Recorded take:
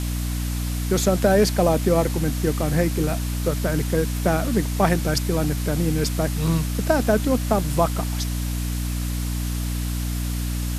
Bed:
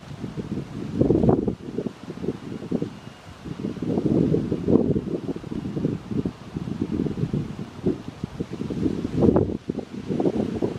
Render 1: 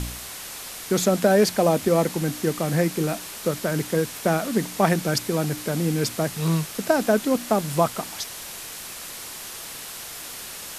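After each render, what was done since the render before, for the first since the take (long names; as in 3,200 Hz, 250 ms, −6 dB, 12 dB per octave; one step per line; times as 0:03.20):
hum removal 60 Hz, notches 5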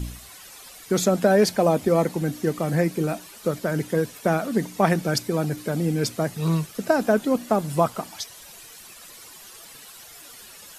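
broadband denoise 12 dB, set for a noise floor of −37 dBFS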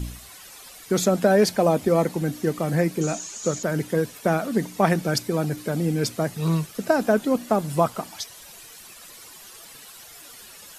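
0:03.01–0:03.63: low-pass with resonance 6,700 Hz, resonance Q 12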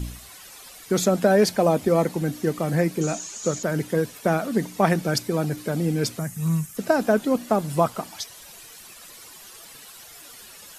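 0:06.19–0:06.77: drawn EQ curve 200 Hz 0 dB, 390 Hz −15 dB, 1,900 Hz −4 dB, 4,300 Hz −12 dB, 6,900 Hz +4 dB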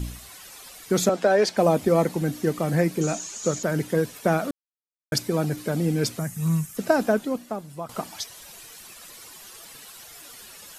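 0:01.09–0:01.57: three-way crossover with the lows and the highs turned down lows −16 dB, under 300 Hz, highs −17 dB, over 7,700 Hz
0:04.51–0:05.12: silence
0:07.01–0:07.89: fade out quadratic, to −14.5 dB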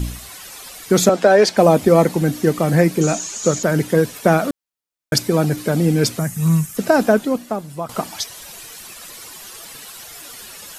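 level +7.5 dB
brickwall limiter −1 dBFS, peak gain reduction 3 dB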